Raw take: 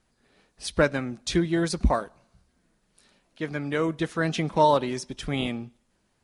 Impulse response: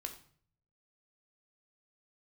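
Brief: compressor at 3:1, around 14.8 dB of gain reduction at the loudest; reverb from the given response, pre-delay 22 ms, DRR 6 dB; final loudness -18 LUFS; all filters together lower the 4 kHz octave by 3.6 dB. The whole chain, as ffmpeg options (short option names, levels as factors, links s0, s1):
-filter_complex "[0:a]equalizer=f=4000:t=o:g=-4.5,acompressor=threshold=0.0158:ratio=3,asplit=2[s0][s1];[1:a]atrim=start_sample=2205,adelay=22[s2];[s1][s2]afir=irnorm=-1:irlink=0,volume=0.631[s3];[s0][s3]amix=inputs=2:normalize=0,volume=8.91"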